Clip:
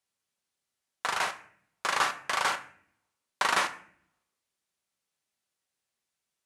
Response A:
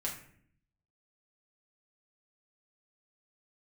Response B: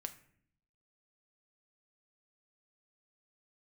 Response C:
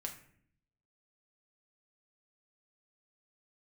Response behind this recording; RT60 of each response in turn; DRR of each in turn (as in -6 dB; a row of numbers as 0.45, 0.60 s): B; 0.60, 0.60, 0.60 s; -3.5, 7.0, 1.5 dB